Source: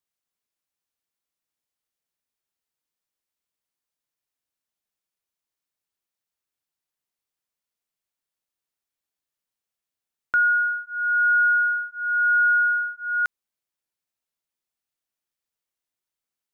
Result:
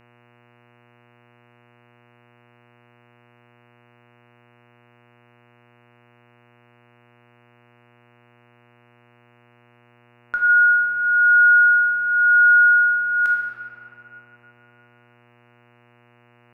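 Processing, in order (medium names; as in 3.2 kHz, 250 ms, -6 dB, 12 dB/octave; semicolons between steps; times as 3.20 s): simulated room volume 140 m³, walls hard, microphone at 0.54 m; mains buzz 120 Hz, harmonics 24, -54 dBFS -3 dB/octave; trim -1.5 dB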